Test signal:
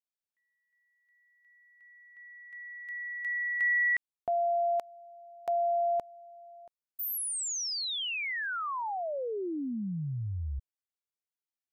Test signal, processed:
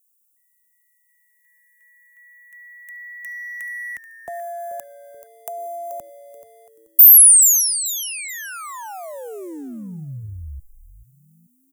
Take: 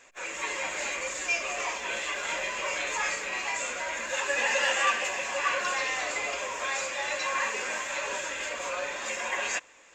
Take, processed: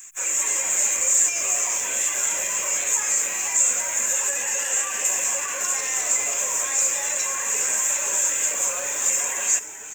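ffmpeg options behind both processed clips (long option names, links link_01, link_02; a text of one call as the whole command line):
ffmpeg -i in.wav -filter_complex "[0:a]acrossover=split=280|950[link_01][link_02][link_03];[link_02]aeval=exprs='sgn(val(0))*max(abs(val(0))-0.001,0)':channel_layout=same[link_04];[link_01][link_04][link_03]amix=inputs=3:normalize=0,alimiter=limit=-23.5dB:level=0:latency=1,highshelf=frequency=9500:gain=3.5,acrossover=split=320[link_05][link_06];[link_06]acompressor=threshold=-33dB:ratio=4:attack=9:release=39:knee=2.83:detection=peak[link_07];[link_05][link_07]amix=inputs=2:normalize=0,asplit=2[link_08][link_09];[link_09]asplit=3[link_10][link_11][link_12];[link_10]adelay=432,afreqshift=-120,volume=-13dB[link_13];[link_11]adelay=864,afreqshift=-240,volume=-22.9dB[link_14];[link_12]adelay=1296,afreqshift=-360,volume=-32.8dB[link_15];[link_13][link_14][link_15]amix=inputs=3:normalize=0[link_16];[link_08][link_16]amix=inputs=2:normalize=0,aexciter=amount=11.8:drive=7.1:freq=6500,volume=1.5dB" out.wav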